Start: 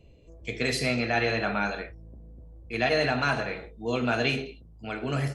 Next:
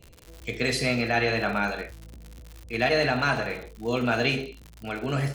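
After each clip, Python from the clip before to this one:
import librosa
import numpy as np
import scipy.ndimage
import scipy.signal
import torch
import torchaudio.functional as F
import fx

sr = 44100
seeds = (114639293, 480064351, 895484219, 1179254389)

y = fx.dmg_crackle(x, sr, seeds[0], per_s=120.0, level_db=-36.0)
y = F.gain(torch.from_numpy(y), 1.5).numpy()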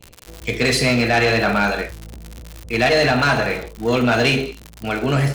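y = fx.leveller(x, sr, passes=2)
y = F.gain(torch.from_numpy(y), 2.5).numpy()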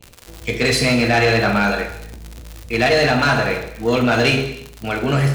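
y = fx.rev_gated(x, sr, seeds[1], gate_ms=340, shape='falling', drr_db=8.5)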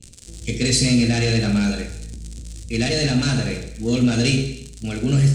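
y = fx.curve_eq(x, sr, hz=(240.0, 1000.0, 8300.0, 14000.0), db=(0, -21, 6, -21))
y = F.gain(torch.from_numpy(y), 2.0).numpy()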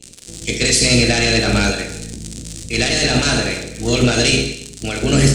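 y = fx.spec_clip(x, sr, under_db=15)
y = F.gain(torch.from_numpy(y), 3.5).numpy()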